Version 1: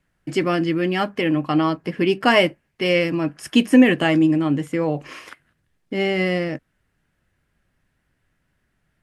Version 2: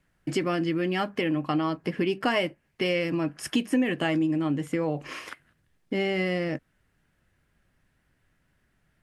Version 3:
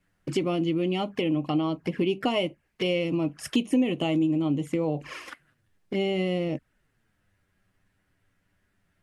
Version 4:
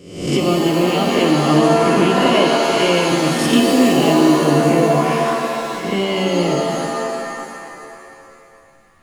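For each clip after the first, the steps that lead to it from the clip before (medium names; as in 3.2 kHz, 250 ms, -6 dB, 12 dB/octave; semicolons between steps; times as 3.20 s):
compression 3:1, threshold -25 dBFS, peak gain reduction 13 dB
touch-sensitive flanger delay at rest 10.7 ms, full sweep at -25 dBFS; trim +1.5 dB
reverse spectral sustain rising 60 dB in 0.69 s; pitch-shifted reverb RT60 2.5 s, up +7 st, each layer -2 dB, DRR 1 dB; trim +6.5 dB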